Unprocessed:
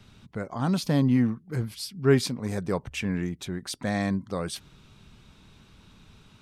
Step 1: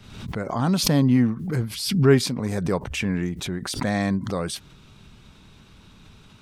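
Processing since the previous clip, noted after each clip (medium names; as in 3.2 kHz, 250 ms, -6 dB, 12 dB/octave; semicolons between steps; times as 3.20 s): swell ahead of each attack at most 61 dB/s; trim +3.5 dB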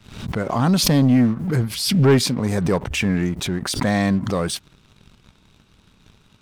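waveshaping leveller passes 2; trim -2.5 dB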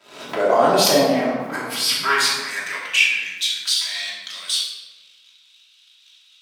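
high-pass sweep 510 Hz -> 3.4 kHz, 0.80–3.42 s; simulated room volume 700 m³, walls mixed, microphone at 2.9 m; trim -2 dB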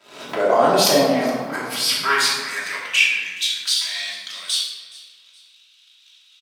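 feedback delay 420 ms, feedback 32%, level -20.5 dB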